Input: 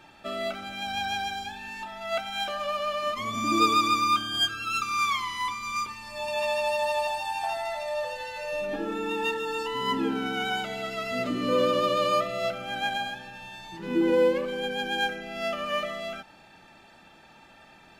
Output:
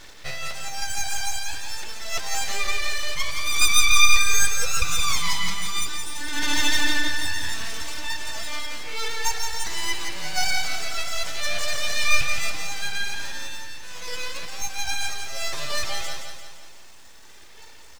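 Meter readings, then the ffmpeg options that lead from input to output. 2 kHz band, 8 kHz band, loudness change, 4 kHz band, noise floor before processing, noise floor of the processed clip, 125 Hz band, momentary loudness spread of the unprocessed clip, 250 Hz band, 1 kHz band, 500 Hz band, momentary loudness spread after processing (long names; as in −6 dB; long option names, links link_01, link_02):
+6.5 dB, +18.0 dB, +3.0 dB, +6.0 dB, −54 dBFS, −43 dBFS, +4.5 dB, 12 LU, −9.5 dB, −5.0 dB, −12.0 dB, 13 LU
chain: -af "highpass=frequency=870:width=0.5412,highpass=frequency=870:width=1.3066,highshelf=frequency=6700:width_type=q:width=3:gain=-12,bandreject=frequency=1600:width=6.6,aphaser=in_gain=1:out_gain=1:delay=2.8:decay=0.6:speed=0.15:type=sinusoidal,aeval=exprs='abs(val(0))':channel_layout=same,acrusher=bits=10:mix=0:aa=0.000001,aecho=1:1:172|344|516|688|860|1032:0.501|0.256|0.13|0.0665|0.0339|0.0173,volume=5dB"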